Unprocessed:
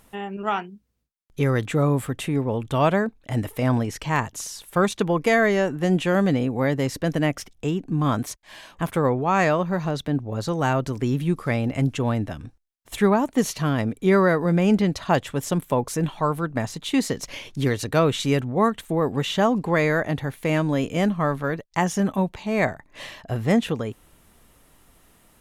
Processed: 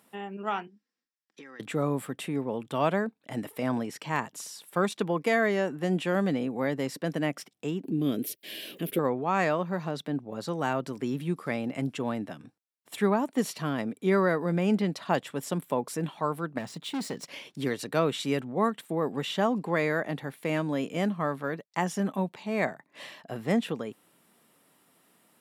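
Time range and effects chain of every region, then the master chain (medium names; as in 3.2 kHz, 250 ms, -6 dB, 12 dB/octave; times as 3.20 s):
0.67–1.60 s: cabinet simulation 320–7600 Hz, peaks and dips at 560 Hz -8 dB, 1.8 kHz +10 dB, 5.3 kHz +7 dB + comb 3.7 ms, depth 40% + compression 8:1, threshold -38 dBFS
7.84–8.99 s: FFT filter 190 Hz 0 dB, 410 Hz +9 dB, 580 Hz -2 dB, 940 Hz -22 dB, 2.9 kHz +4 dB, 4.1 kHz 0 dB, 7.8 kHz -5 dB, 13 kHz +14 dB + upward compressor, threshold -22 dBFS
16.58–17.24 s: median filter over 3 samples + bass shelf 130 Hz +8.5 dB + hard clipper -22.5 dBFS
whole clip: high-pass 160 Hz 24 dB/octave; band-stop 6.4 kHz, Q 9.2; trim -6 dB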